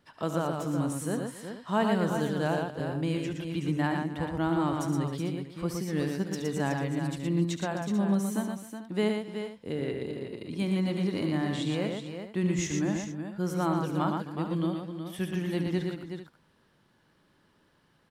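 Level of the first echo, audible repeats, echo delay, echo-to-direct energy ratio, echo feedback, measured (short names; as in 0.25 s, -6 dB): -11.5 dB, 5, 71 ms, -2.0 dB, no steady repeat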